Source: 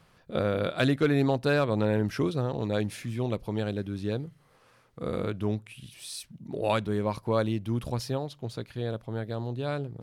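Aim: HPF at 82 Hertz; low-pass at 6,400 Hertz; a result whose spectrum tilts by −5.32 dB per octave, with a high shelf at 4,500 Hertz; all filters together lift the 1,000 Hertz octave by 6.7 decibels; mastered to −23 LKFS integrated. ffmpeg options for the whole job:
ffmpeg -i in.wav -af "highpass=82,lowpass=6400,equalizer=frequency=1000:width_type=o:gain=8.5,highshelf=frequency=4500:gain=3.5,volume=5dB" out.wav

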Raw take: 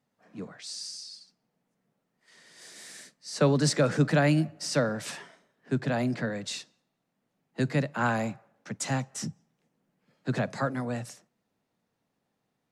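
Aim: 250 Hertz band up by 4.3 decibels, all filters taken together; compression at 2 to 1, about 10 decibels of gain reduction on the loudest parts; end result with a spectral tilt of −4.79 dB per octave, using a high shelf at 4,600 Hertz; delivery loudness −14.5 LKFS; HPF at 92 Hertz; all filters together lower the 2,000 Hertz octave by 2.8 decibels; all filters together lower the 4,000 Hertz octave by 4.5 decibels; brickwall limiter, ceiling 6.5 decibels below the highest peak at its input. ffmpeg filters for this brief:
ffmpeg -i in.wav -af "highpass=92,equalizer=frequency=250:width_type=o:gain=5.5,equalizer=frequency=2000:width_type=o:gain=-3,equalizer=frequency=4000:width_type=o:gain=-8,highshelf=frequency=4600:gain=4,acompressor=threshold=-35dB:ratio=2,volume=23dB,alimiter=limit=-2dB:level=0:latency=1" out.wav

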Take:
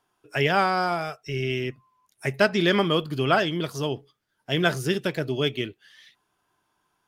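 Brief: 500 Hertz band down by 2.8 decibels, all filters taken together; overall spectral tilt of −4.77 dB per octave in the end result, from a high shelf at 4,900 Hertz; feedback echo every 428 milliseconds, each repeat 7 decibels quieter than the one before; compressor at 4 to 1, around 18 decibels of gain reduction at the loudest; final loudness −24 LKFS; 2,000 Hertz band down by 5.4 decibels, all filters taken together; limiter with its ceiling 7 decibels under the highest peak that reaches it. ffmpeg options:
ffmpeg -i in.wav -af "equalizer=frequency=500:width_type=o:gain=-3.5,equalizer=frequency=2000:width_type=o:gain=-8.5,highshelf=frequency=4900:gain=6.5,acompressor=threshold=-41dB:ratio=4,alimiter=level_in=8dB:limit=-24dB:level=0:latency=1,volume=-8dB,aecho=1:1:428|856|1284|1712|2140:0.447|0.201|0.0905|0.0407|0.0183,volume=19.5dB" out.wav

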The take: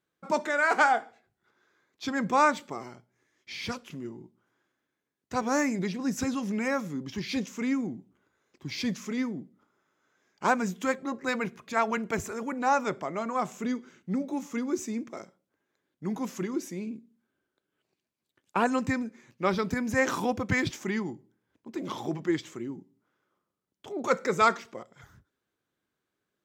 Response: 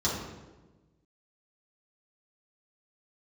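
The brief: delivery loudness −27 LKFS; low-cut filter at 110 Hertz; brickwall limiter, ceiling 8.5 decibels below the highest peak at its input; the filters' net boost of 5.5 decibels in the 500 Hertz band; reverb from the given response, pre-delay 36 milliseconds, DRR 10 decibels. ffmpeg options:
-filter_complex "[0:a]highpass=110,equalizer=frequency=500:width_type=o:gain=6.5,alimiter=limit=-15.5dB:level=0:latency=1,asplit=2[link_01][link_02];[1:a]atrim=start_sample=2205,adelay=36[link_03];[link_02][link_03]afir=irnorm=-1:irlink=0,volume=-19.5dB[link_04];[link_01][link_04]amix=inputs=2:normalize=0,volume=2dB"

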